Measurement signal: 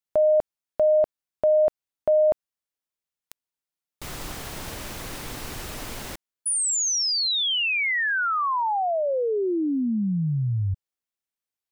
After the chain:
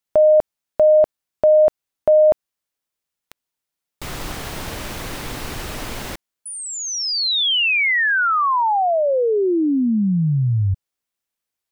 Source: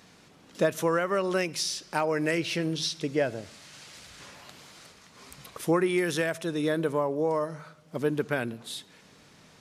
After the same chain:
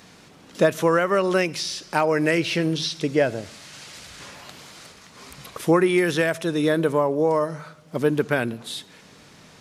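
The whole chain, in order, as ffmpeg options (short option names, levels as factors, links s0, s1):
-filter_complex "[0:a]acrossover=split=4600[s0][s1];[s1]acompressor=threshold=0.00891:ratio=4:attack=1:release=60[s2];[s0][s2]amix=inputs=2:normalize=0,volume=2.11"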